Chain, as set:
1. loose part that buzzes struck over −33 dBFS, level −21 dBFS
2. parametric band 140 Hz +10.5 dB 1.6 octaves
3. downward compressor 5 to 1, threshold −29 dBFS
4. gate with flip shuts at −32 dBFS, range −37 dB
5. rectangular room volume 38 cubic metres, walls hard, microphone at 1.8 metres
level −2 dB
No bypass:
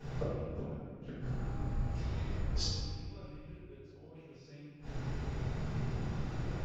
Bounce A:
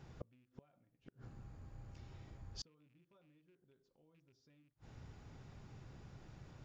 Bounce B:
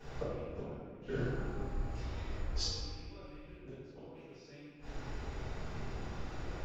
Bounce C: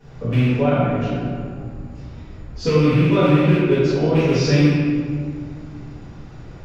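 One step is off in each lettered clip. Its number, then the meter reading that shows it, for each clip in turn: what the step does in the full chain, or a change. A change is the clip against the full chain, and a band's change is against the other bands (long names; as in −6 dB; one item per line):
5, echo-to-direct ratio 17.0 dB to none audible
2, 125 Hz band −5.5 dB
4, change in momentary loudness spread +4 LU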